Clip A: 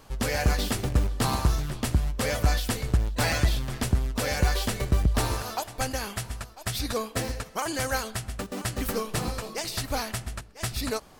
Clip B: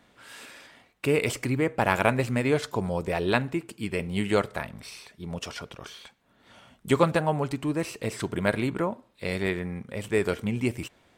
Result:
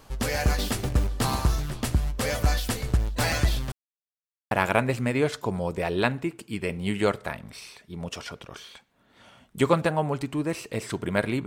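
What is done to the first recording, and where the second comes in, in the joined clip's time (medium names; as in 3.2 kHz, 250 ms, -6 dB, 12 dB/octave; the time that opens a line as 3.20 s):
clip A
3.72–4.51 s: mute
4.51 s: go over to clip B from 1.81 s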